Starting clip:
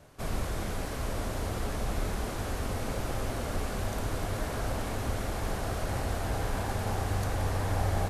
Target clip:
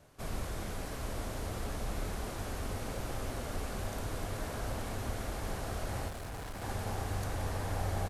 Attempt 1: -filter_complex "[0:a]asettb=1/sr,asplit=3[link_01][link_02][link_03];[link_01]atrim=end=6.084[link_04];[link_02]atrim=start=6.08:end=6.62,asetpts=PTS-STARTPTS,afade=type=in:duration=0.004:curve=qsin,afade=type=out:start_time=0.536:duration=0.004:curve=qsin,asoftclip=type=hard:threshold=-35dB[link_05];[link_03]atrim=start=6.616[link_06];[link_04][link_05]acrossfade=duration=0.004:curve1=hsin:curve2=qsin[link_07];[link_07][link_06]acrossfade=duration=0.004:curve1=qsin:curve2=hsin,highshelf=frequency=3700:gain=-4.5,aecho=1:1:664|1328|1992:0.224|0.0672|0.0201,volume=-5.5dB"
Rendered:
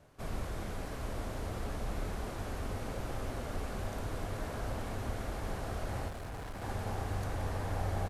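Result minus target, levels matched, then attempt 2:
8,000 Hz band −5.0 dB
-filter_complex "[0:a]asettb=1/sr,asplit=3[link_01][link_02][link_03];[link_01]atrim=end=6.084[link_04];[link_02]atrim=start=6.08:end=6.62,asetpts=PTS-STARTPTS,afade=type=in:duration=0.004:curve=qsin,afade=type=out:start_time=0.536:duration=0.004:curve=qsin,asoftclip=type=hard:threshold=-35dB[link_05];[link_03]atrim=start=6.616[link_06];[link_04][link_05]acrossfade=duration=0.004:curve1=hsin:curve2=qsin[link_07];[link_07][link_06]acrossfade=duration=0.004:curve1=qsin:curve2=hsin,highshelf=frequency=3700:gain=2,aecho=1:1:664|1328|1992:0.224|0.0672|0.0201,volume=-5.5dB"

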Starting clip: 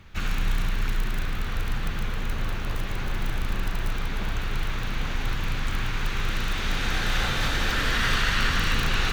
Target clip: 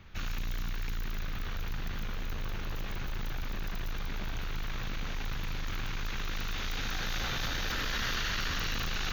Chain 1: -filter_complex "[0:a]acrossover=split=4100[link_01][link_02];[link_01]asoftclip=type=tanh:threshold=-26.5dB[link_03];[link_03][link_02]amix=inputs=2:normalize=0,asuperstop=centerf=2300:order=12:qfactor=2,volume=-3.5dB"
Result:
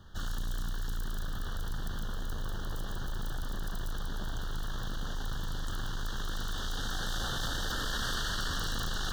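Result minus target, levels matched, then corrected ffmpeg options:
8,000 Hz band +2.5 dB
-filter_complex "[0:a]acrossover=split=4100[link_01][link_02];[link_01]asoftclip=type=tanh:threshold=-26.5dB[link_03];[link_03][link_02]amix=inputs=2:normalize=0,asuperstop=centerf=9100:order=12:qfactor=2,volume=-3.5dB"

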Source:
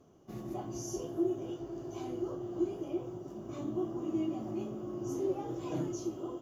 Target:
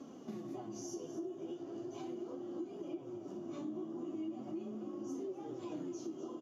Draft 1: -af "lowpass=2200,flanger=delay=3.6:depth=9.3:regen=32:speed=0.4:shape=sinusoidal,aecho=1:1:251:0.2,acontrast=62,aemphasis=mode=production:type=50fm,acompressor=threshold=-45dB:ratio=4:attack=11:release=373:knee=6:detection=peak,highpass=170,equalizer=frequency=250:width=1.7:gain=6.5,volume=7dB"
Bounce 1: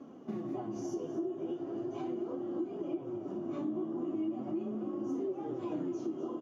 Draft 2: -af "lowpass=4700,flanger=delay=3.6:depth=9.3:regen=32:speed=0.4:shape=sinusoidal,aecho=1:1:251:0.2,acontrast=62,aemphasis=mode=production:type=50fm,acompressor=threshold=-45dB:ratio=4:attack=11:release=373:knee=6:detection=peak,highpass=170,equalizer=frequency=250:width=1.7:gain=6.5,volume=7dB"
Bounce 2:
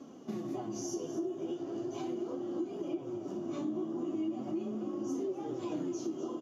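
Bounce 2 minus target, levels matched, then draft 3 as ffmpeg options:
downward compressor: peak gain reduction −6.5 dB
-af "lowpass=4700,flanger=delay=3.6:depth=9.3:regen=32:speed=0.4:shape=sinusoidal,aecho=1:1:251:0.2,acontrast=62,aemphasis=mode=production:type=50fm,acompressor=threshold=-53.5dB:ratio=4:attack=11:release=373:knee=6:detection=peak,highpass=170,equalizer=frequency=250:width=1.7:gain=6.5,volume=7dB"

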